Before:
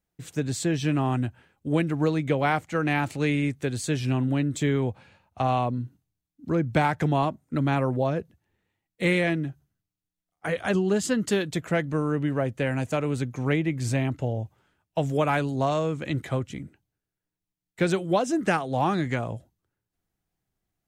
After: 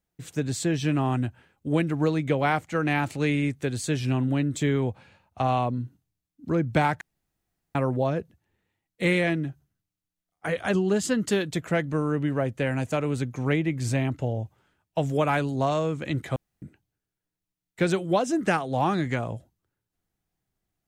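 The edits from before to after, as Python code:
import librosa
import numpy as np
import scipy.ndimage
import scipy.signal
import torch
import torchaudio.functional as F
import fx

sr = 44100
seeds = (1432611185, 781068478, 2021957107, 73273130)

y = fx.edit(x, sr, fx.room_tone_fill(start_s=7.01, length_s=0.74),
    fx.room_tone_fill(start_s=16.36, length_s=0.26), tone=tone)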